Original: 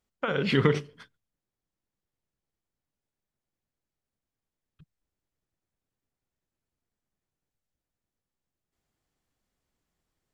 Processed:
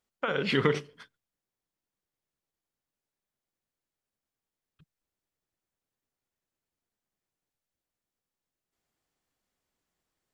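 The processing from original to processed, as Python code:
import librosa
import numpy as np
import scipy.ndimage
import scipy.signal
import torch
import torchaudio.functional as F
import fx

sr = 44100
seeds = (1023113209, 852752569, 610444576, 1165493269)

y = fx.low_shelf(x, sr, hz=200.0, db=-9.0)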